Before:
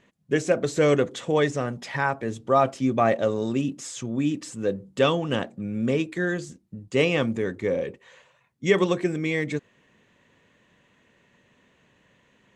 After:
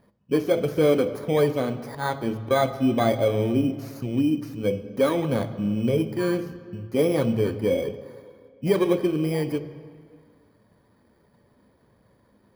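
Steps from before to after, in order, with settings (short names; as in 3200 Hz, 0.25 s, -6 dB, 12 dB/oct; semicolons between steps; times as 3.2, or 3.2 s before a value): FFT order left unsorted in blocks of 16 samples; LPF 1500 Hz 6 dB/oct; in parallel at +2 dB: limiter -17 dBFS, peak gain reduction 7.5 dB; 1.64–2.51 on the sum: auto swell 0.105 s; flange 1.5 Hz, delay 1.2 ms, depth 2.8 ms, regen -55%; on a send at -10.5 dB: reverb RT60 2.2 s, pre-delay 3 ms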